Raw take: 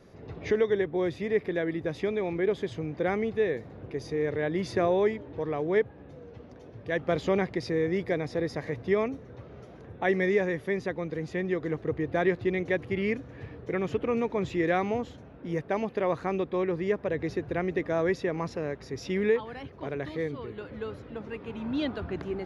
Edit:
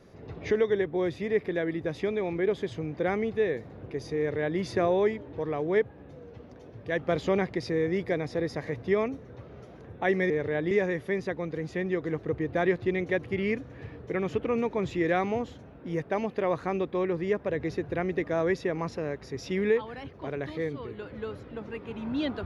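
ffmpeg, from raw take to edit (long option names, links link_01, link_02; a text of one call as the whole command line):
ffmpeg -i in.wav -filter_complex "[0:a]asplit=3[link_01][link_02][link_03];[link_01]atrim=end=10.302[link_04];[link_02]atrim=start=4.178:end=4.592[link_05];[link_03]atrim=start=10.298[link_06];[link_04][link_05]acrossfade=duration=0.004:curve1=hsin:curve2=hsin[link_07];[link_07][link_06]acrossfade=duration=0.004:curve1=hsin:curve2=hsin" out.wav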